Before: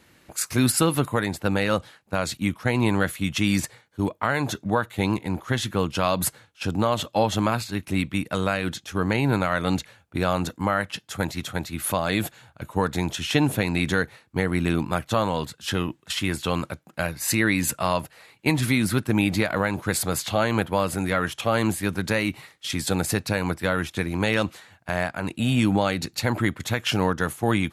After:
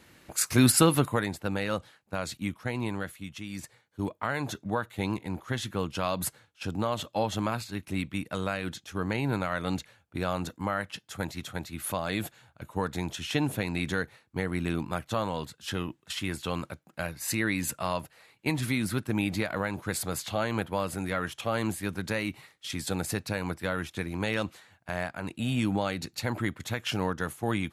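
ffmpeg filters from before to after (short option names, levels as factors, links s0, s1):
-af "volume=3.76,afade=t=out:st=0.84:d=0.56:silence=0.421697,afade=t=out:st=2.41:d=1.08:silence=0.281838,afade=t=in:st=3.49:d=0.51:silence=0.266073"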